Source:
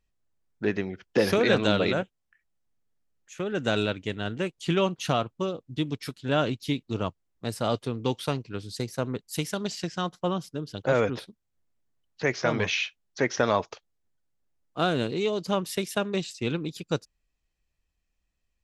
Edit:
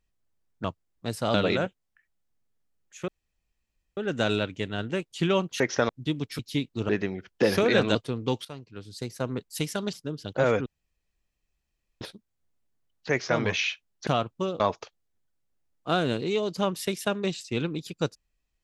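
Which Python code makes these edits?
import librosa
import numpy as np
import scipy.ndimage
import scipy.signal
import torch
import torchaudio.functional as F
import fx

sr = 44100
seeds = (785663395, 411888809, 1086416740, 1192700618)

y = fx.edit(x, sr, fx.swap(start_s=0.64, length_s=1.06, other_s=7.03, other_length_s=0.7),
    fx.insert_room_tone(at_s=3.44, length_s=0.89),
    fx.swap(start_s=5.07, length_s=0.53, other_s=13.21, other_length_s=0.29),
    fx.cut(start_s=6.1, length_s=0.43),
    fx.fade_in_from(start_s=8.23, length_s=0.92, floor_db=-16.5),
    fx.cut(start_s=9.71, length_s=0.71),
    fx.insert_room_tone(at_s=11.15, length_s=1.35), tone=tone)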